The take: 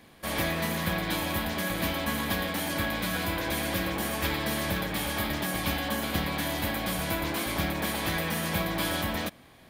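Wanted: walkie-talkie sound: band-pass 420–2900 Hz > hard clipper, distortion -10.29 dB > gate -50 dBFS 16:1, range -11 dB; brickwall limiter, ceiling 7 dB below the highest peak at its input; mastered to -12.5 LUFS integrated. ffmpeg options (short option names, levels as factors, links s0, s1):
-af "alimiter=limit=0.0944:level=0:latency=1,highpass=420,lowpass=2900,asoftclip=type=hard:threshold=0.02,agate=range=0.282:threshold=0.00316:ratio=16,volume=15.8"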